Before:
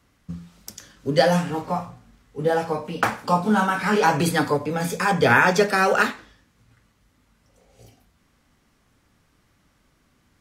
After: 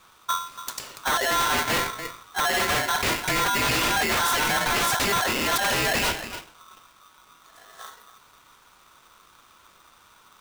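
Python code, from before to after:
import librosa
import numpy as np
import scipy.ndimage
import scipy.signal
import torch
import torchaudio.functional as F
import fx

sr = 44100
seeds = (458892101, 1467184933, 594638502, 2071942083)

y = fx.over_compress(x, sr, threshold_db=-24.0, ratio=-1.0)
y = y + 10.0 ** (-15.5 / 20.0) * np.pad(y, (int(286 * sr / 1000.0), 0))[:len(y)]
y = 10.0 ** (-22.0 / 20.0) * (np.abs((y / 10.0 ** (-22.0 / 20.0) + 3.0) % 4.0 - 2.0) - 1.0)
y = y * np.sign(np.sin(2.0 * np.pi * 1200.0 * np.arange(len(y)) / sr))
y = y * librosa.db_to_amplitude(4.0)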